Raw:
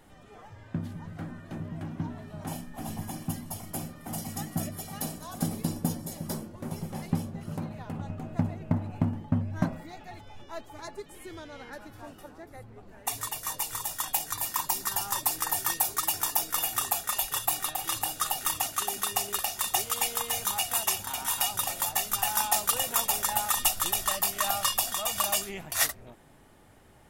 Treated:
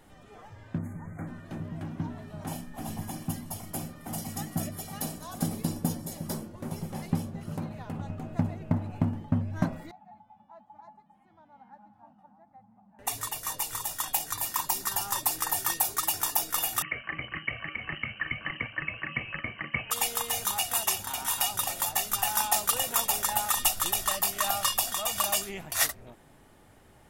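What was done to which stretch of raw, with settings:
0.78–1.27 s: spectral selection erased 2.4–6.3 kHz
9.91–12.99 s: two resonant band-passes 410 Hz, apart 2 oct
16.82–19.91 s: frequency inversion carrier 3 kHz

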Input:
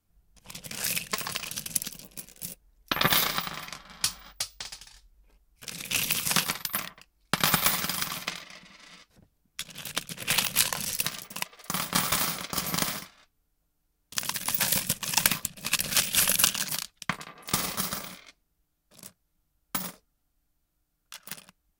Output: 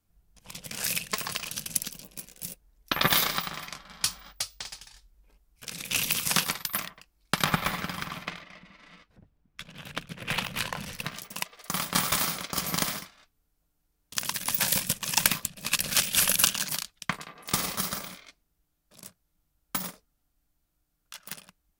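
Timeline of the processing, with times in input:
7.44–11.16 s: tone controls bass +3 dB, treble -15 dB

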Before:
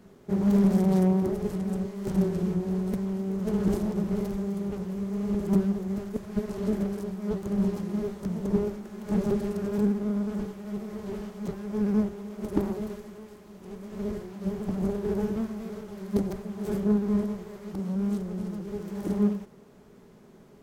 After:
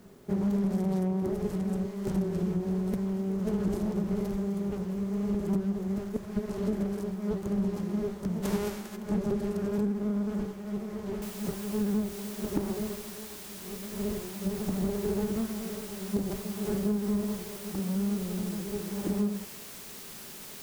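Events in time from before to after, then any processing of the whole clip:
8.42–8.95 s: formants flattened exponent 0.6
11.22 s: noise floor step -68 dB -45 dB
whole clip: compression 5:1, threshold -25 dBFS

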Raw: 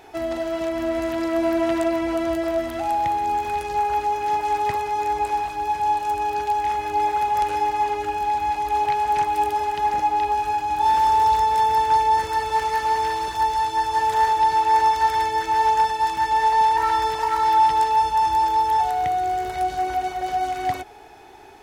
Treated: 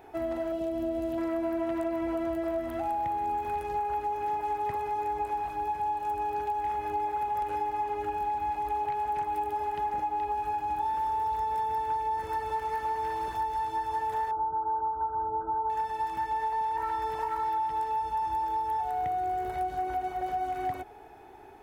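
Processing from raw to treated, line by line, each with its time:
0.52–1.18 s: high-order bell 1.4 kHz -10.5 dB
14.31–15.70 s: brick-wall FIR low-pass 1.6 kHz
whole clip: compression, threshold -23 dBFS; peaking EQ 5.3 kHz -13 dB 2.2 oct; trim -3.5 dB

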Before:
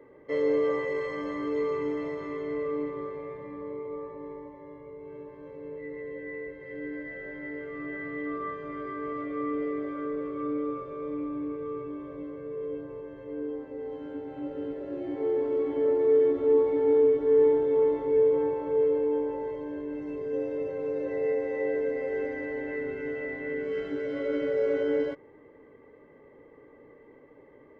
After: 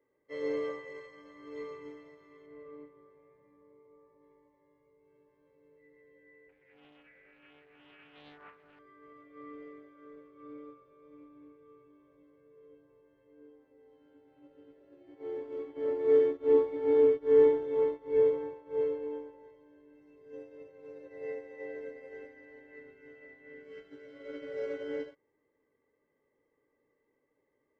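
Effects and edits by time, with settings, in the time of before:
2.46–4.22 s: treble shelf 2.8 kHz -11.5 dB
6.49–8.79 s: loudspeaker Doppler distortion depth 0.63 ms
whole clip: treble shelf 2 kHz +9.5 dB; upward expansion 2.5:1, over -34 dBFS

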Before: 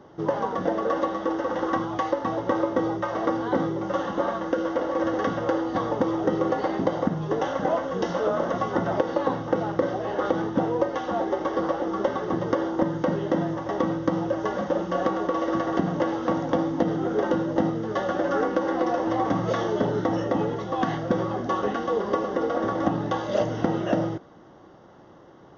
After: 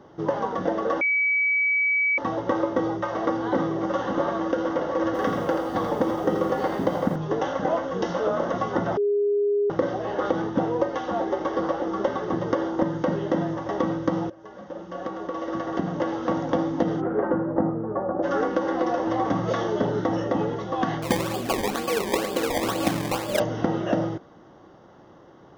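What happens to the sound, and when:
1.01–2.18 s: bleep 2.28 kHz -19 dBFS
2.87–3.95 s: echo throw 560 ms, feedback 75%, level -8.5 dB
5.06–7.16 s: bit-crushed delay 84 ms, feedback 35%, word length 8-bit, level -6.5 dB
8.97–9.70 s: bleep 409 Hz -19 dBFS
14.30–16.40 s: fade in linear, from -22.5 dB
17.00–18.22 s: low-pass 2.1 kHz -> 1 kHz 24 dB/octave
21.02–23.40 s: decimation with a swept rate 22× 2.1 Hz

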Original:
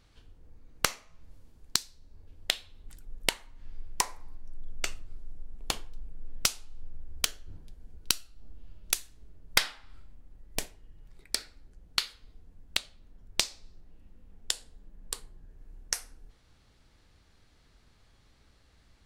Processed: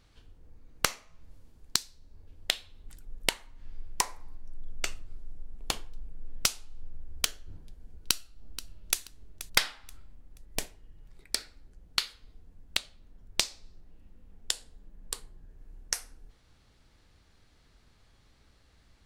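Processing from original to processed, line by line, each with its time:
8.09–9.01 s: echo throw 480 ms, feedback 30%, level -14 dB

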